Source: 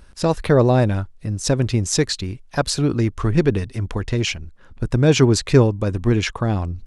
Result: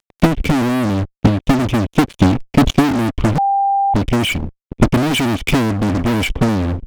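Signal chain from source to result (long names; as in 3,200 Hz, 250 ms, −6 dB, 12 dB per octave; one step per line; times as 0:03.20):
0:04.84–0:05.51: parametric band 2,700 Hz +5 dB 2 octaves
formant resonators in series i
0:06.06–0:06.49: low-shelf EQ 91 Hz +7.5 dB
fuzz pedal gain 44 dB, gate −50 dBFS
transient designer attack +11 dB, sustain −3 dB
0:02.21–0:02.71: level that may fall only so fast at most 73 dB per second
0:03.38–0:03.94: beep over 793 Hz −9.5 dBFS
level −2.5 dB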